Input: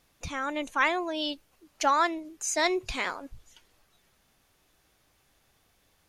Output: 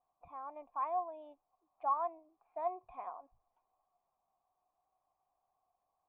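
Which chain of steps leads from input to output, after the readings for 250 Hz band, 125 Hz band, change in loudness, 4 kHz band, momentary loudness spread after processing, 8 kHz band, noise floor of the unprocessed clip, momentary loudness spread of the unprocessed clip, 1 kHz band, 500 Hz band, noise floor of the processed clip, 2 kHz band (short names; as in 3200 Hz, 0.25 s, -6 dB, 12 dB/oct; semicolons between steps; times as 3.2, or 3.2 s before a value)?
-25.5 dB, under -25 dB, -11.0 dB, under -40 dB, 17 LU, under -40 dB, -68 dBFS, 9 LU, -8.0 dB, -11.0 dB, under -85 dBFS, -33.5 dB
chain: vocal tract filter a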